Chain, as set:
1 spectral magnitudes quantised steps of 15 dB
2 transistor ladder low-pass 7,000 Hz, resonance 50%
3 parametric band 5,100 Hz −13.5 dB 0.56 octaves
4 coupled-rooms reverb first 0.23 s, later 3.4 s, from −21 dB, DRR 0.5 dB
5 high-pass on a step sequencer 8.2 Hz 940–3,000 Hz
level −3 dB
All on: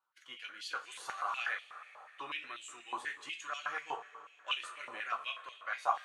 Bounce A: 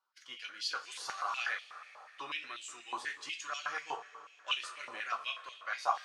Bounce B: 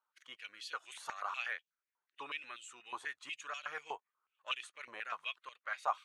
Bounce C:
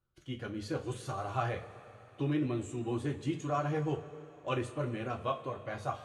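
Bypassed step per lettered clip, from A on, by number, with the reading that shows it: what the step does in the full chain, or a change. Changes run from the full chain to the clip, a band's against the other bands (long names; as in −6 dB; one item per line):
3, 8 kHz band +4.5 dB
4, change in momentary loudness spread −2 LU
5, 250 Hz band +27.0 dB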